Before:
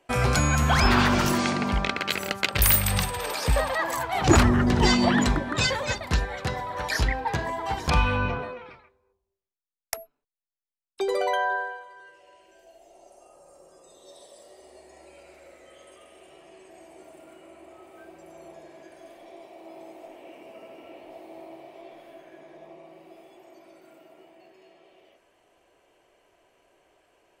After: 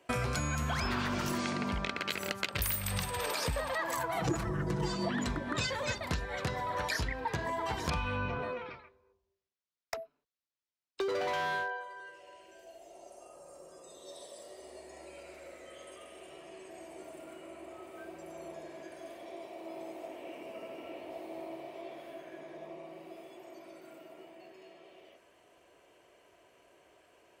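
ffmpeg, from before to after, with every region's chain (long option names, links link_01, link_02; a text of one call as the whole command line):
ffmpeg -i in.wav -filter_complex "[0:a]asettb=1/sr,asplit=3[link_01][link_02][link_03];[link_01]atrim=end=4.034[link_04];[link_02]atrim=start=4.03:end=5.09,asetpts=PTS-STARTPTS,afade=type=in:duration=0.004:curve=qsin,afade=type=out:start_time=1.056:duration=0.004:curve=qsin,equalizer=frequency=3200:width=0.69:gain=-8,aecho=1:1:6.1:0.91,atrim=end_sample=46746[link_05];[link_03]atrim=start=5.086[link_06];[link_04][link_05]acrossfade=duration=0.004:curve1=hsin:curve2=qsin[link_07];[link_07][link_06]acrossfade=duration=0.004:curve1=qsin:curve2=hsin,asettb=1/sr,asplit=3[link_08][link_09][link_10];[link_08]atrim=end=8.634[link_11];[link_09]atrim=start=8.63:end=11.8,asetpts=PTS-STARTPTS,afade=type=in:duration=0.004:curve=qsin,afade=type=out:start_time=3.166:duration=0.004:curve=qsin,lowpass=frequency=6200:width=0.5412,lowpass=frequency=6200:width=1.3066,volume=26.5dB,asoftclip=hard,volume=-26.5dB[link_12];[link_10]atrim=start=11.796[link_13];[link_11][link_12]acrossfade=duration=0.004:curve1=hsin:curve2=qsin[link_14];[link_14][link_13]acrossfade=duration=0.004:curve1=qsin:curve2=hsin,highpass=54,bandreject=frequency=800:width=12,acompressor=threshold=-32dB:ratio=6,volume=1dB" out.wav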